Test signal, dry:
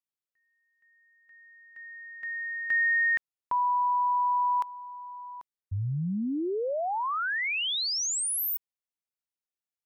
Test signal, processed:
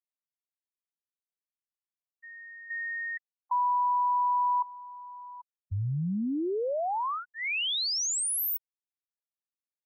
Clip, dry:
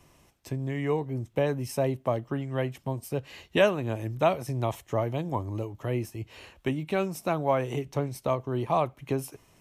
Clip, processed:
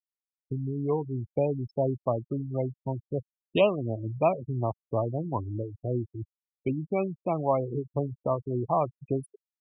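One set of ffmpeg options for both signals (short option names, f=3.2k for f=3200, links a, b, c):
-af "asuperstop=centerf=1600:order=4:qfactor=2,afftfilt=real='re*gte(hypot(re,im),0.0562)':imag='im*gte(hypot(re,im),0.0562)':win_size=1024:overlap=0.75"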